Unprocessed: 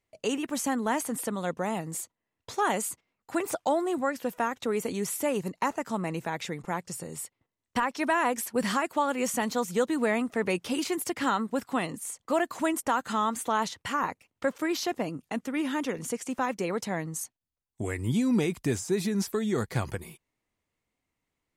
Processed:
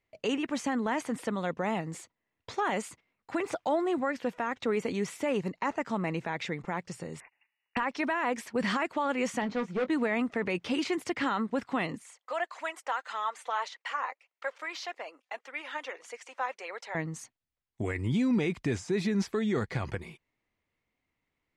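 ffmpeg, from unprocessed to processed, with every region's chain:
ffmpeg -i in.wav -filter_complex "[0:a]asettb=1/sr,asplit=3[link_01][link_02][link_03];[link_01]atrim=end=7.204[link_04];[link_02]atrim=start=7.2:end=7.77,asetpts=PTS-STARTPTS,afade=type=in:duration=0.004:curve=qsin,afade=type=out:start_time=0.566:duration=0.004:curve=qsin,equalizer=frequency=930:width=1.4:gain=9.5,lowpass=frequency=2500:width_type=q:width=0.5098,lowpass=frequency=2500:width_type=q:width=0.6013,lowpass=frequency=2500:width_type=q:width=0.9,lowpass=frequency=2500:width_type=q:width=2.563,afreqshift=-2900[link_05];[link_03]atrim=start=7.766[link_06];[link_04][link_05]acrossfade=duration=0.004:curve1=hsin:curve2=qsin[link_07];[link_07][link_06]acrossfade=duration=0.004:curve1=qsin:curve2=hsin,asettb=1/sr,asplit=3[link_08][link_09][link_10];[link_08]atrim=end=9.414[link_11];[link_09]atrim=start=9.41:end=9.9,asetpts=PTS-STARTPTS,afade=type=in:duration=0.004:curve=qsin,afade=type=out:start_time=0.486:duration=0.004:curve=qsin,lowpass=frequency=1300:poles=1,volume=26.5dB,asoftclip=hard,volume=-26.5dB,asplit=2[link_12][link_13];[link_13]adelay=20,volume=-10.5dB[link_14];[link_12][link_14]amix=inputs=2:normalize=0,atrim=end_sample=21609[link_15];[link_10]atrim=start=9.896[link_16];[link_11][link_15]acrossfade=duration=0.004:curve1=hsin:curve2=qsin[link_17];[link_17][link_16]acrossfade=duration=0.004:curve1=qsin:curve2=hsin,asettb=1/sr,asplit=3[link_18][link_19][link_20];[link_18]atrim=end=12.024[link_21];[link_19]atrim=start=12.02:end=16.95,asetpts=PTS-STARTPTS,afade=type=in:duration=0.004:curve=qsin,afade=type=out:start_time=4.926:duration=0.004:curve=qsin,highpass=frequency=540:width=0.5412,highpass=frequency=540:width=1.3066,flanger=delay=0.4:depth=3.6:regen=45:speed=1.7:shape=sinusoidal[link_22];[link_20]atrim=start=16.946[link_23];[link_21][link_22]acrossfade=duration=0.004:curve1=hsin:curve2=qsin[link_24];[link_24][link_23]acrossfade=duration=0.004:curve1=qsin:curve2=hsin,lowpass=4600,equalizer=frequency=2100:width=2.3:gain=4,alimiter=limit=-20.5dB:level=0:latency=1:release=14" out.wav

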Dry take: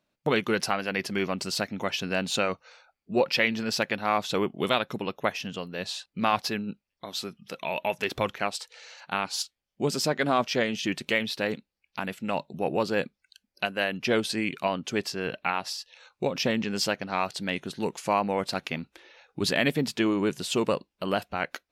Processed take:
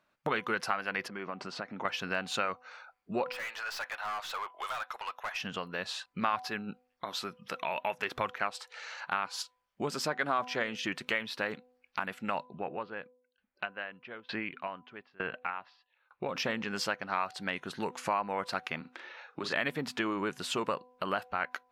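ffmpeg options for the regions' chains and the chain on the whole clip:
ffmpeg -i in.wav -filter_complex "[0:a]asettb=1/sr,asplit=3[link_01][link_02][link_03];[link_01]atrim=end=1.084[link_04];[link_02]atrim=start=1.08:end=1.85,asetpts=PTS-STARTPTS,afade=type=in:duration=0.004:curve=qsin,afade=type=out:start_time=0.766:duration=0.004:curve=qsin,highshelf=frequency=2100:gain=-10.5,acompressor=threshold=-35dB:ratio=3:attack=3.2:release=140:knee=1:detection=peak,highpass=150,lowpass=5800[link_05];[link_03]atrim=start=1.846[link_06];[link_04][link_05]acrossfade=duration=0.004:curve1=hsin:curve2=qsin[link_07];[link_07][link_06]acrossfade=duration=0.004:curve1=qsin:curve2=hsin,asettb=1/sr,asplit=3[link_08][link_09][link_10];[link_08]atrim=end=3.324[link_11];[link_09]atrim=start=3.32:end=5.36,asetpts=PTS-STARTPTS,afade=type=in:duration=0.004:curve=qsin,afade=type=out:start_time=2.036:duration=0.004:curve=qsin,highpass=frequency=690:width=0.5412,highpass=frequency=690:width=1.3066,aeval=exprs='(tanh(63.1*val(0)+0.2)-tanh(0.2))/63.1':channel_layout=same[link_12];[link_10]atrim=start=5.356[link_13];[link_11][link_12]acrossfade=duration=0.004:curve1=hsin:curve2=qsin[link_14];[link_14][link_13]acrossfade=duration=0.004:curve1=qsin:curve2=hsin,asettb=1/sr,asplit=3[link_15][link_16][link_17];[link_15]atrim=end=12.474[link_18];[link_16]atrim=start=12.47:end=16.29,asetpts=PTS-STARTPTS,afade=type=in:duration=0.004:curve=qsin,afade=type=out:start_time=3.816:duration=0.004:curve=qsin,lowpass=frequency=3400:width=0.5412,lowpass=frequency=3400:width=1.3066,aeval=exprs='val(0)*pow(10,-28*if(lt(mod(1.1*n/s,1),2*abs(1.1)/1000),1-mod(1.1*n/s,1)/(2*abs(1.1)/1000),(mod(1.1*n/s,1)-2*abs(1.1)/1000)/(1-2*abs(1.1)/1000))/20)':channel_layout=same[link_19];[link_17]atrim=start=16.286[link_20];[link_18][link_19]acrossfade=duration=0.004:curve1=hsin:curve2=qsin[link_21];[link_21][link_20]acrossfade=duration=0.004:curve1=qsin:curve2=hsin,asettb=1/sr,asplit=3[link_22][link_23][link_24];[link_22]atrim=end=18.814[link_25];[link_23]atrim=start=18.81:end=19.53,asetpts=PTS-STARTPTS,afade=type=in:duration=0.004:curve=qsin,afade=type=out:start_time=0.716:duration=0.004:curve=qsin,acrossover=split=150 7500:gain=0.2 1 0.141[link_26][link_27][link_28];[link_26][link_27][link_28]amix=inputs=3:normalize=0,acompressor=threshold=-31dB:ratio=2.5:attack=3.2:release=140:knee=1:detection=peak,asplit=2[link_29][link_30];[link_30]adelay=39,volume=-7dB[link_31];[link_29][link_31]amix=inputs=2:normalize=0,atrim=end_sample=31752[link_32];[link_24]atrim=start=19.526[link_33];[link_25][link_32]acrossfade=duration=0.004:curve1=hsin:curve2=qsin[link_34];[link_34][link_33]acrossfade=duration=0.004:curve1=qsin:curve2=hsin,equalizer=frequency=1300:width=0.76:gain=13,bandreject=frequency=250:width_type=h:width=4,bandreject=frequency=500:width_type=h:width=4,bandreject=frequency=750:width_type=h:width=4,bandreject=frequency=1000:width_type=h:width=4,acompressor=threshold=-33dB:ratio=2,volume=-3dB" out.wav

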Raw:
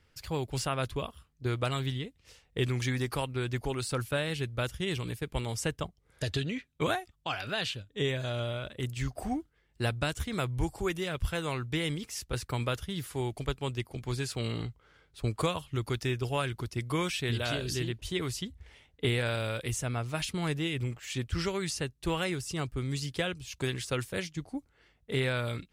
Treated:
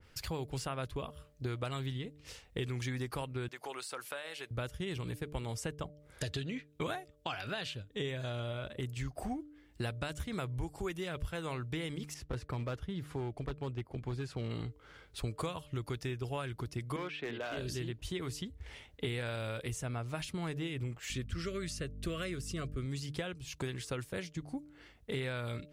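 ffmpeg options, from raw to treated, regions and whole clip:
ffmpeg -i in.wav -filter_complex "[0:a]asettb=1/sr,asplit=3[link_01][link_02][link_03];[link_01]atrim=end=3.484[link_04];[link_02]atrim=start=3.48:end=4.51,asetpts=PTS-STARTPTS,afade=type=in:duration=0.004:curve=qsin,afade=type=out:start_time=1.026:duration=0.004:curve=qsin,highpass=630,acompressor=threshold=-40dB:ratio=2:attack=3.2:release=140:knee=1:detection=peak[link_05];[link_03]atrim=start=4.506[link_06];[link_04][link_05]acrossfade=duration=0.004:curve1=hsin:curve2=qsin[link_07];[link_07][link_06]acrossfade=duration=0.004:curve1=qsin:curve2=hsin,asettb=1/sr,asplit=3[link_08][link_09][link_10];[link_08]atrim=end=12.144[link_11];[link_09]atrim=start=12.14:end=14.51,asetpts=PTS-STARTPTS,afade=type=in:duration=0.004:curve=qsin,afade=type=out:start_time=2.366:duration=0.004:curve=qsin,lowpass=frequency=1700:poles=1,agate=range=-33dB:threshold=-56dB:ratio=3:release=100:detection=peak,asoftclip=type=hard:threshold=-28dB[link_12];[link_10]atrim=start=14.506[link_13];[link_11][link_12]acrossfade=duration=0.004:curve1=hsin:curve2=qsin[link_14];[link_14][link_13]acrossfade=duration=0.004:curve1=qsin:curve2=hsin,asettb=1/sr,asplit=3[link_15][link_16][link_17];[link_15]atrim=end=16.964[link_18];[link_16]atrim=start=16.96:end=17.57,asetpts=PTS-STARTPTS,afade=type=in:duration=0.004:curve=qsin,afade=type=out:start_time=0.606:duration=0.004:curve=qsin,highpass=110,lowpass=6100,acrossover=split=250 3200:gain=0.141 1 0.0891[link_19][link_20][link_21];[link_19][link_20][link_21]amix=inputs=3:normalize=0,asoftclip=type=hard:threshold=-30dB[link_22];[link_17]atrim=start=17.566[link_23];[link_18][link_22]acrossfade=duration=0.004:curve1=hsin:curve2=qsin[link_24];[link_24][link_23]acrossfade=duration=0.004:curve1=qsin:curve2=hsin,asettb=1/sr,asplit=3[link_25][link_26][link_27];[link_25]atrim=end=21.104[link_28];[link_26]atrim=start=21.1:end=22.86,asetpts=PTS-STARTPTS,afade=type=in:duration=0.004:curve=qsin,afade=type=out:start_time=1.756:duration=0.004:curve=qsin,aeval=exprs='val(0)+0.00794*(sin(2*PI*50*n/s)+sin(2*PI*2*50*n/s)/2+sin(2*PI*3*50*n/s)/3+sin(2*PI*4*50*n/s)/4+sin(2*PI*5*50*n/s)/5)':channel_layout=same,asuperstop=centerf=860:order=12:qfactor=2.6[link_29];[link_27]atrim=start=22.856[link_30];[link_28][link_29]acrossfade=duration=0.004:curve1=hsin:curve2=qsin[link_31];[link_31][link_30]acrossfade=duration=0.004:curve1=qsin:curve2=hsin,bandreject=frequency=148.5:width_type=h:width=4,bandreject=frequency=297:width_type=h:width=4,bandreject=frequency=445.5:width_type=h:width=4,bandreject=frequency=594:width_type=h:width=4,acompressor=threshold=-45dB:ratio=3,adynamicequalizer=threshold=0.00112:dfrequency=2000:dqfactor=0.7:tfrequency=2000:tqfactor=0.7:attack=5:release=100:ratio=0.375:range=2:mode=cutabove:tftype=highshelf,volume=6dB" out.wav

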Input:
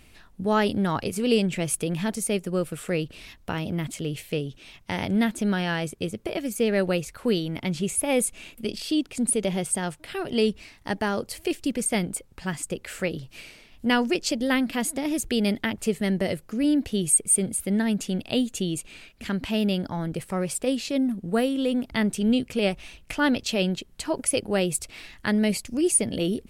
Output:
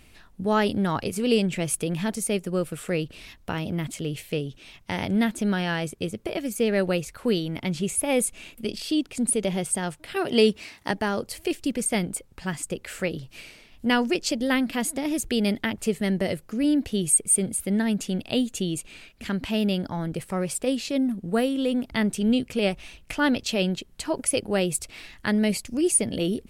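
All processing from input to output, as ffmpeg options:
ffmpeg -i in.wav -filter_complex "[0:a]asettb=1/sr,asplit=3[link_01][link_02][link_03];[link_01]atrim=end=10.164[link_04];[link_02]atrim=start=10.16:end=10.91,asetpts=PTS-STARTPTS,afade=type=in:duration=0.004:curve=qsin,afade=type=out:start_time=0.746:duration=0.004:curve=qsin,highpass=50,lowshelf=frequency=120:gain=-12,acontrast=33[link_05];[link_03]atrim=start=10.906[link_06];[link_04][link_05]acrossfade=duration=0.004:curve1=hsin:curve2=qsin[link_07];[link_07][link_06]acrossfade=duration=0.004:curve1=qsin:curve2=hsin" out.wav

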